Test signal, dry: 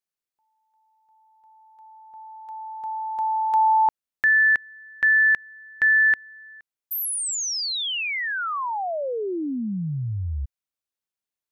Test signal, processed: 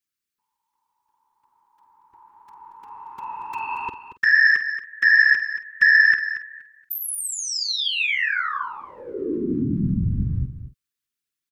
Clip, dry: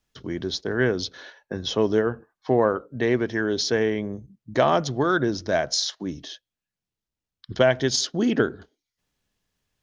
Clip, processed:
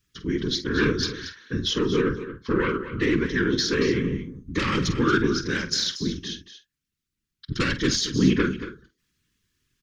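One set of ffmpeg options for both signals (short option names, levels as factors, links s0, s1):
-filter_complex "[0:a]acrossover=split=3500[s0][s1];[s1]acompressor=threshold=0.0126:ratio=6:attack=89:release=23:detection=rms[s2];[s0][s2]amix=inputs=2:normalize=0,aeval=exprs='0.562*sin(PI/2*2.51*val(0)/0.562)':c=same,afftfilt=real='hypot(re,im)*cos(2*PI*random(0))':imag='hypot(re,im)*sin(2*PI*random(1))':win_size=512:overlap=0.75,asuperstop=centerf=690:order=4:qfactor=0.83,asplit=2[s3][s4];[s4]adelay=48,volume=0.251[s5];[s3][s5]amix=inputs=2:normalize=0,asplit=2[s6][s7];[s7]aecho=0:1:230:0.251[s8];[s6][s8]amix=inputs=2:normalize=0,volume=0.841"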